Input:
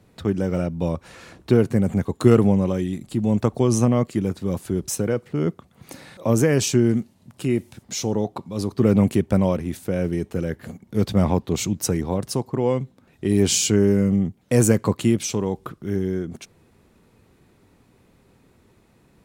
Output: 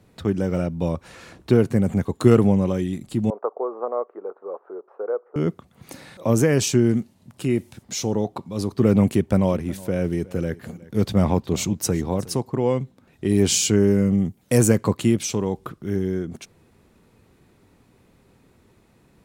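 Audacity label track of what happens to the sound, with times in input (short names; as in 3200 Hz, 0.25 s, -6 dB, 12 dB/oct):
3.300000	5.360000	elliptic band-pass 430–1300 Hz, stop band 70 dB
9.040000	12.390000	echo 0.365 s -20.5 dB
14.180000	14.580000	high shelf 7300 Hz +11.5 dB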